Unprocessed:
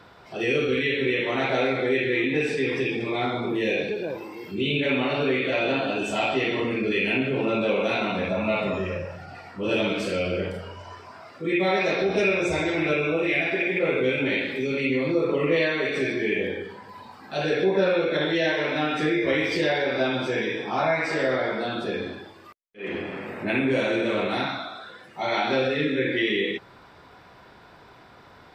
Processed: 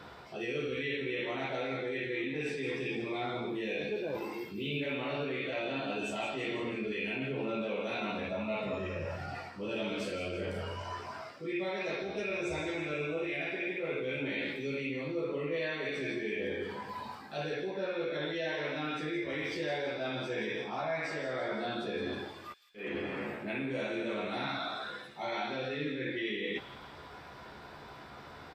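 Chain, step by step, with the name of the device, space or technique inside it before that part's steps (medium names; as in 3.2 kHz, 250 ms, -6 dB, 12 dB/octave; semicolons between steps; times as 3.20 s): compression on the reversed sound (reverse; compression 5:1, threshold -35 dBFS, peak gain reduction 16 dB; reverse); doubling 14 ms -6.5 dB; feedback echo behind a high-pass 166 ms, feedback 53%, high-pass 3.6 kHz, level -9 dB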